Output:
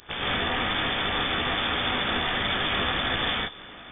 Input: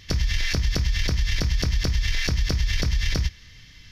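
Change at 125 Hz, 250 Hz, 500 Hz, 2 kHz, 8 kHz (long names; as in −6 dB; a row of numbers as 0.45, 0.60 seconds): −12.5 dB, +0.5 dB, +5.5 dB, +5.0 dB, below −40 dB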